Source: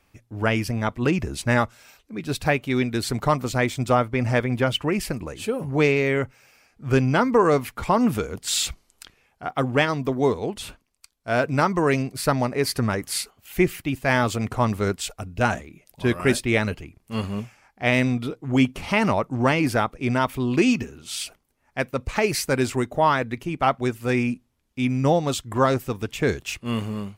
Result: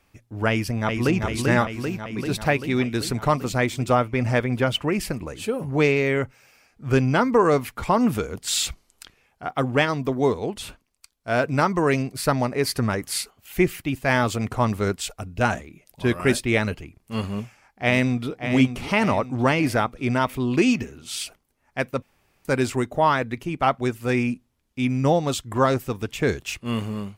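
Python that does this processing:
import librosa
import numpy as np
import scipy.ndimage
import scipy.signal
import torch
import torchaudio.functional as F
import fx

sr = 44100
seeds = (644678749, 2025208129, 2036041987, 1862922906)

y = fx.echo_throw(x, sr, start_s=0.49, length_s=0.71, ms=390, feedback_pct=70, wet_db=-4.0)
y = fx.echo_throw(y, sr, start_s=17.29, length_s=1.09, ms=580, feedback_pct=45, wet_db=-8.5)
y = fx.edit(y, sr, fx.room_tone_fill(start_s=22.02, length_s=0.43), tone=tone)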